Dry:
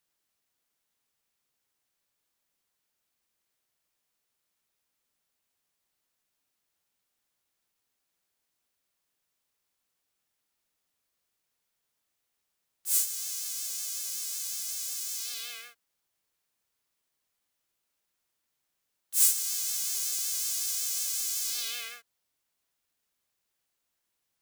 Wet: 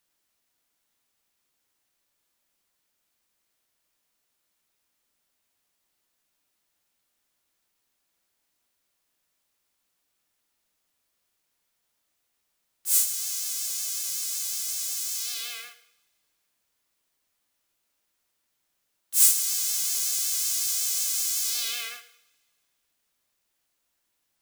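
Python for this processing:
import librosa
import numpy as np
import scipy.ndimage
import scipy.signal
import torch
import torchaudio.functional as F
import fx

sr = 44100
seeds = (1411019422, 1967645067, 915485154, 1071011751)

y = fx.rev_double_slope(x, sr, seeds[0], early_s=0.68, late_s=2.3, knee_db=-24, drr_db=9.0)
y = y * 10.0 ** (4.0 / 20.0)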